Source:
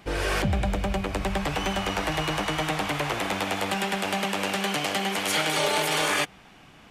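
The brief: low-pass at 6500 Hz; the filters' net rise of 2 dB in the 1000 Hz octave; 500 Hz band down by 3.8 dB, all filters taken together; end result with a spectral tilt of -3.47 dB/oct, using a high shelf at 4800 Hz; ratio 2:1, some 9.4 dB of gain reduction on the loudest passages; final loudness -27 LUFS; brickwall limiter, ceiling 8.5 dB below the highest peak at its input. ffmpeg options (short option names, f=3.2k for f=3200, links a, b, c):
-af "lowpass=6.5k,equalizer=f=500:t=o:g=-6.5,equalizer=f=1k:t=o:g=4.5,highshelf=f=4.8k:g=5.5,acompressor=threshold=-38dB:ratio=2,volume=10.5dB,alimiter=limit=-18dB:level=0:latency=1"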